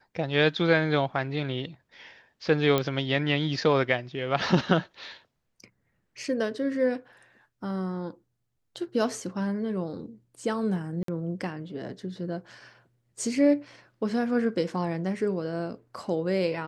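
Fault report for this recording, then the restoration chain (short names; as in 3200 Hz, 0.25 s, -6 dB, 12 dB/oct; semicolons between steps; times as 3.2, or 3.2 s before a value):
2.78 pop -11 dBFS
11.03–11.08 gap 53 ms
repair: de-click; interpolate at 11.03, 53 ms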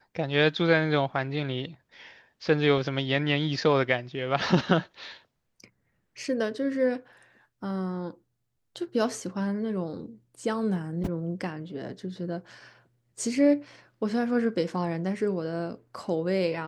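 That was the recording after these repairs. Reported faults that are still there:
none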